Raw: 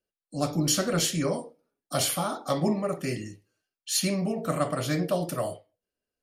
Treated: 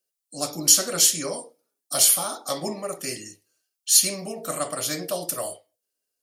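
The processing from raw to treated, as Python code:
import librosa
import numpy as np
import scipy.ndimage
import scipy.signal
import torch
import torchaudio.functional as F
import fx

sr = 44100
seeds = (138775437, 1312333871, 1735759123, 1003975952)

y = fx.bass_treble(x, sr, bass_db=-11, treble_db=14)
y = y * librosa.db_to_amplitude(-1.0)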